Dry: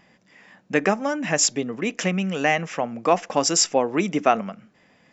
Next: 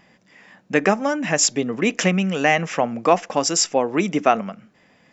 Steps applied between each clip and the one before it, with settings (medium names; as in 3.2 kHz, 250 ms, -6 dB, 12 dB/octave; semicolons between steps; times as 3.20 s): gain riding 0.5 s; trim +2.5 dB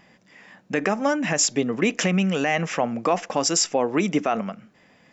peak limiter -10.5 dBFS, peak gain reduction 9 dB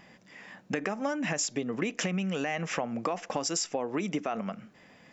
compression 6:1, threshold -28 dBFS, peak gain reduction 12 dB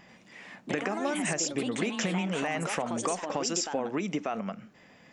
ever faster or slower copies 87 ms, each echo +3 st, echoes 2, each echo -6 dB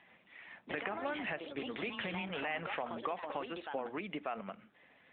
bass shelf 420 Hz -11.5 dB; trim -3 dB; AMR-NB 10.2 kbps 8 kHz